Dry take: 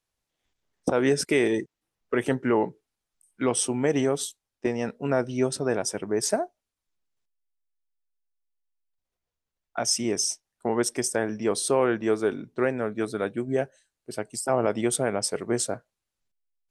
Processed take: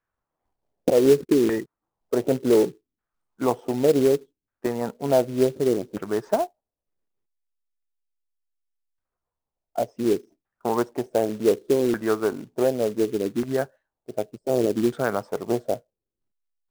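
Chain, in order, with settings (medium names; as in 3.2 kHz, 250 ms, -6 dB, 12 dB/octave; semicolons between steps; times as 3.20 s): LFO low-pass saw down 0.67 Hz 280–1600 Hz; short-mantissa float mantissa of 2-bit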